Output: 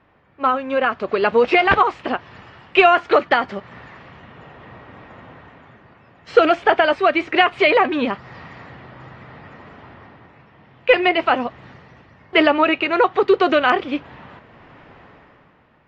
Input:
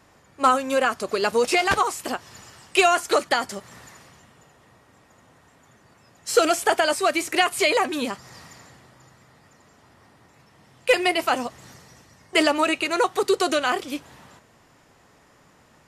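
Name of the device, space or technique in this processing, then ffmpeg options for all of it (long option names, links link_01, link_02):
action camera in a waterproof case: -af "lowpass=frequency=3000:width=0.5412,lowpass=frequency=3000:width=1.3066,dynaudnorm=framelen=100:gausssize=17:maxgain=16dB,volume=-1dB" -ar 44100 -c:a aac -b:a 64k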